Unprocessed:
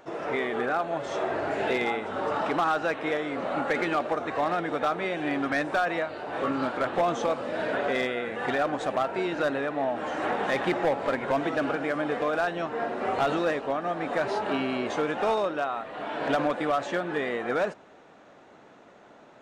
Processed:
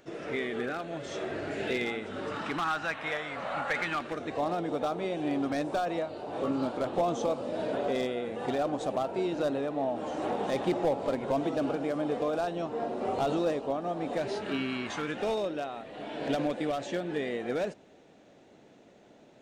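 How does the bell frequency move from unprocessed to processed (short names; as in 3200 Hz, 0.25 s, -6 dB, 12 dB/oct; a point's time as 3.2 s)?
bell -14 dB 1.4 oct
2.16 s 920 Hz
3.14 s 330 Hz
3.79 s 330 Hz
4.43 s 1700 Hz
14 s 1700 Hz
14.94 s 470 Hz
15.26 s 1200 Hz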